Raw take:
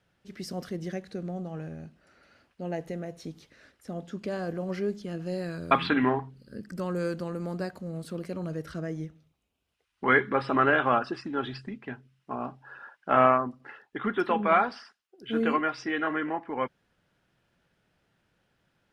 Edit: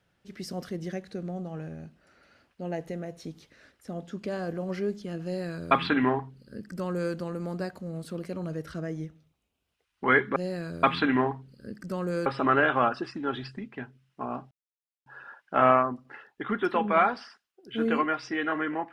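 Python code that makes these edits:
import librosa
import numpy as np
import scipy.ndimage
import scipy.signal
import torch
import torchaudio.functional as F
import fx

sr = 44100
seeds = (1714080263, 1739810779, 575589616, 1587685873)

y = fx.edit(x, sr, fx.duplicate(start_s=5.24, length_s=1.9, to_s=10.36),
    fx.insert_silence(at_s=12.61, length_s=0.55), tone=tone)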